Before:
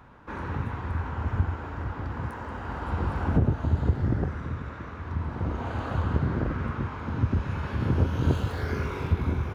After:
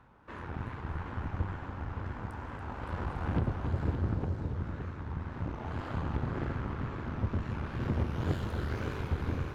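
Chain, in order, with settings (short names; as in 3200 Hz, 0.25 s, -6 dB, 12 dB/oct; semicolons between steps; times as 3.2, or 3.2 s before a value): spectral delete 4.14–4.54, 960–3700 Hz; wow and flutter 140 cents; added harmonics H 8 -18 dB, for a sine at -11 dBFS; on a send: multi-head echo 0.283 s, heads first and second, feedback 47%, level -9 dB; on the sum: gain -8.5 dB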